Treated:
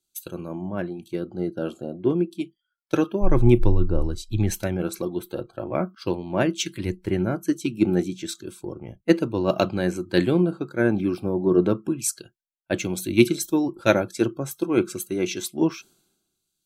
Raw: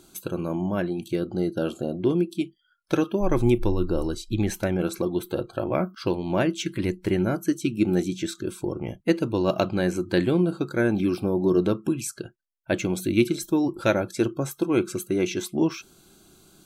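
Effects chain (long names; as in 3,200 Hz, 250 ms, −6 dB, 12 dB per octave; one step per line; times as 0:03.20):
multiband upward and downward expander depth 100%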